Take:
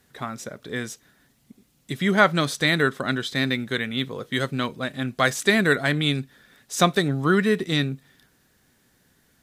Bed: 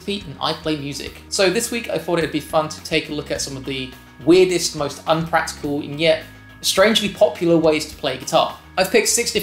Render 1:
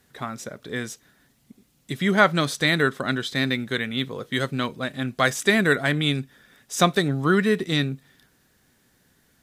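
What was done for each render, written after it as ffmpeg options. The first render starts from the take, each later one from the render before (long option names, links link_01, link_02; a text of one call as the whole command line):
ffmpeg -i in.wav -filter_complex "[0:a]asettb=1/sr,asplit=3[link_01][link_02][link_03];[link_01]atrim=end=5.284[link_04];[link_02]atrim=start=5.28:end=6.81,asetpts=PTS-STARTPTS,afade=type=in:duration=0.004:curve=qsin,afade=type=out:start_time=1.526:duration=0.004:curve=qsin,bandreject=frequency=4200:width=11[link_05];[link_03]atrim=start=6.806[link_06];[link_04][link_05]acrossfade=duration=0.004:curve1=hsin:curve2=qsin[link_07];[link_07][link_06]acrossfade=duration=0.004:curve1=qsin:curve2=hsin" out.wav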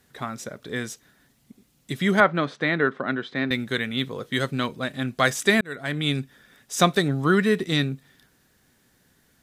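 ffmpeg -i in.wav -filter_complex "[0:a]asettb=1/sr,asplit=3[link_01][link_02][link_03];[link_01]atrim=end=2.204[link_04];[link_02]atrim=start=2.2:end=3.51,asetpts=PTS-STARTPTS,afade=type=in:duration=0.004:curve=qsin,afade=type=out:start_time=1.306:duration=0.004:curve=qsin,highpass=180,lowpass=2100[link_05];[link_03]atrim=start=3.506[link_06];[link_04][link_05]acrossfade=duration=0.004:curve1=hsin:curve2=qsin[link_07];[link_07][link_06]acrossfade=duration=0.004:curve1=qsin:curve2=hsin,asplit=2[link_08][link_09];[link_08]atrim=end=5.61,asetpts=PTS-STARTPTS,afade=type=out:start_time=5.606:duration=0.004:curve=hsin[link_10];[link_09]atrim=start=5.61,asetpts=PTS-STARTPTS,afade=type=in:duration=0.56[link_11];[link_10][link_11]concat=n=2:v=0:a=1" out.wav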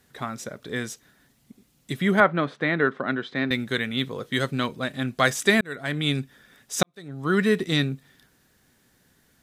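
ffmpeg -i in.wav -filter_complex "[0:a]asettb=1/sr,asplit=3[link_01][link_02][link_03];[link_01]atrim=end=1.964[link_04];[link_02]atrim=start=1.96:end=2.78,asetpts=PTS-STARTPTS,afade=type=in:duration=0.004:curve=qsin,afade=type=out:start_time=0.816:duration=0.004:curve=qsin,equalizer=frequency=5800:width_type=o:width=1.3:gain=-7.5[link_05];[link_03]atrim=start=2.776[link_06];[link_04][link_05]acrossfade=duration=0.004:curve1=hsin:curve2=qsin[link_07];[link_07][link_06]acrossfade=duration=0.004:curve1=qsin:curve2=hsin,asplit=2[link_08][link_09];[link_08]atrim=end=6.83,asetpts=PTS-STARTPTS,afade=type=out:start_time=6.826:duration=0.004:curve=hsin[link_10];[link_09]atrim=start=6.83,asetpts=PTS-STARTPTS,afade=type=in:duration=0.59:curve=qua[link_11];[link_10][link_11]concat=n=2:v=0:a=1" out.wav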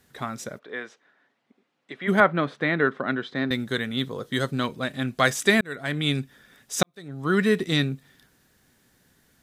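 ffmpeg -i in.wav -filter_complex "[0:a]asplit=3[link_01][link_02][link_03];[link_01]afade=type=out:start_time=0.58:duration=0.02[link_04];[link_02]highpass=470,lowpass=2200,afade=type=in:start_time=0.58:duration=0.02,afade=type=out:start_time=2.07:duration=0.02[link_05];[link_03]afade=type=in:start_time=2.07:duration=0.02[link_06];[link_04][link_05][link_06]amix=inputs=3:normalize=0,asettb=1/sr,asplit=3[link_07][link_08][link_09];[link_07]atrim=end=3.304[link_10];[link_08]atrim=start=3.3:end=4.64,asetpts=PTS-STARTPTS,afade=type=in:duration=0.004:curve=qsin,afade=type=out:start_time=1.336:duration=0.004:curve=qsin,equalizer=frequency=2400:width=2.5:gain=-6.5[link_11];[link_09]atrim=start=4.636[link_12];[link_10][link_11]acrossfade=duration=0.004:curve1=hsin:curve2=qsin[link_13];[link_13][link_12]acrossfade=duration=0.004:curve1=qsin:curve2=hsin" out.wav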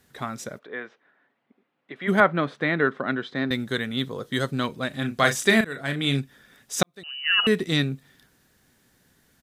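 ffmpeg -i in.wav -filter_complex "[0:a]asettb=1/sr,asplit=3[link_01][link_02][link_03];[link_01]atrim=end=0.674[link_04];[link_02]atrim=start=0.67:end=1.96,asetpts=PTS-STARTPTS,afade=type=in:duration=0.004:curve=qsin,afade=type=out:start_time=1.286:duration=0.004:curve=qsin,lowpass=2800[link_05];[link_03]atrim=start=1.956[link_06];[link_04][link_05]acrossfade=duration=0.004:curve1=hsin:curve2=qsin[link_07];[link_07][link_06]acrossfade=duration=0.004:curve1=qsin:curve2=hsin,asplit=3[link_08][link_09][link_10];[link_08]afade=type=out:start_time=4.91:duration=0.02[link_11];[link_09]asplit=2[link_12][link_13];[link_13]adelay=36,volume=-7.5dB[link_14];[link_12][link_14]amix=inputs=2:normalize=0,afade=type=in:start_time=4.91:duration=0.02,afade=type=out:start_time=6.19:duration=0.02[link_15];[link_10]afade=type=in:start_time=6.19:duration=0.02[link_16];[link_11][link_15][link_16]amix=inputs=3:normalize=0,asettb=1/sr,asplit=3[link_17][link_18][link_19];[link_17]atrim=end=7.034[link_20];[link_18]atrim=start=7.03:end=7.47,asetpts=PTS-STARTPTS,afade=type=in:duration=0.004:curve=qsin,afade=type=out:start_time=0.436:duration=0.004:curve=qsin,lowpass=frequency=2600:width_type=q:width=0.5098,lowpass=frequency=2600:width_type=q:width=0.6013,lowpass=frequency=2600:width_type=q:width=0.9,lowpass=frequency=2600:width_type=q:width=2.563,afreqshift=-3100[link_21];[link_19]atrim=start=7.466[link_22];[link_20][link_21]acrossfade=duration=0.004:curve1=hsin:curve2=qsin[link_23];[link_23][link_22]acrossfade=duration=0.004:curve1=qsin:curve2=hsin" out.wav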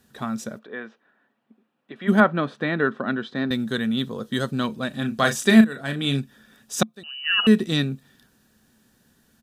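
ffmpeg -i in.wav -af "equalizer=frequency=220:width_type=o:width=0.21:gain=11,bandreject=frequency=2100:width=5.8" out.wav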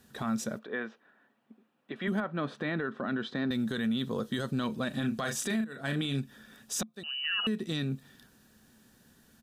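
ffmpeg -i in.wav -af "acompressor=threshold=-25dB:ratio=8,alimiter=limit=-23dB:level=0:latency=1:release=12" out.wav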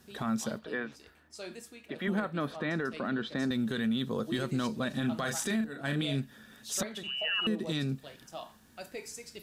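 ffmpeg -i in.wav -i bed.wav -filter_complex "[1:a]volume=-27dB[link_01];[0:a][link_01]amix=inputs=2:normalize=0" out.wav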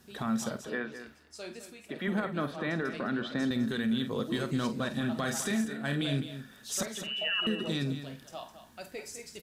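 ffmpeg -i in.wav -filter_complex "[0:a]asplit=2[link_01][link_02];[link_02]adelay=49,volume=-12.5dB[link_03];[link_01][link_03]amix=inputs=2:normalize=0,aecho=1:1:208:0.282" out.wav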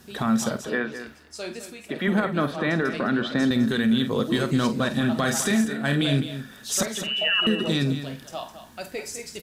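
ffmpeg -i in.wav -af "volume=8.5dB" out.wav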